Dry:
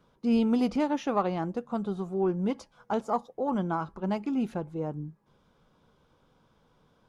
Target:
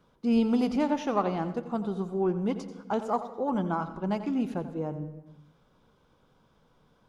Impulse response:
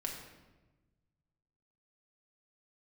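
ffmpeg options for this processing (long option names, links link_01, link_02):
-filter_complex "[0:a]asplit=2[link_01][link_02];[1:a]atrim=start_sample=2205,afade=type=out:start_time=0.45:duration=0.01,atrim=end_sample=20286,adelay=87[link_03];[link_02][link_03]afir=irnorm=-1:irlink=0,volume=-11dB[link_04];[link_01][link_04]amix=inputs=2:normalize=0"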